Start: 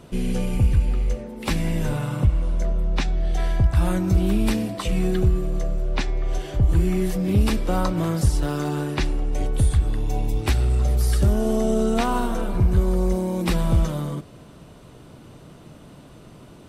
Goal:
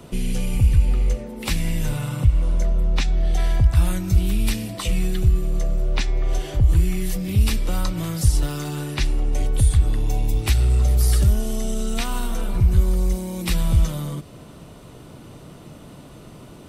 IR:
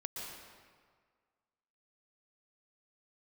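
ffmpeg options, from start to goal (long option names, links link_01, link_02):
-filter_complex "[0:a]highshelf=frequency=11000:gain=6.5,bandreject=frequency=1600:width=22,acrossover=split=140|1800[link_01][link_02][link_03];[link_02]acompressor=threshold=-34dB:ratio=6[link_04];[link_01][link_04][link_03]amix=inputs=3:normalize=0,volume=3dB"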